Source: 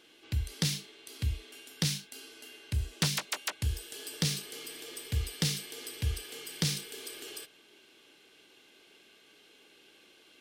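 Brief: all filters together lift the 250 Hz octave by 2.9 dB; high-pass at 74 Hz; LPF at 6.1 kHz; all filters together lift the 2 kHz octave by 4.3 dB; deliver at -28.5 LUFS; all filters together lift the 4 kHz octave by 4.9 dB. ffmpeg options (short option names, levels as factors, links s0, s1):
-af "highpass=74,lowpass=6100,equalizer=f=250:t=o:g=5.5,equalizer=f=2000:t=o:g=3.5,equalizer=f=4000:t=o:g=6,volume=1.58"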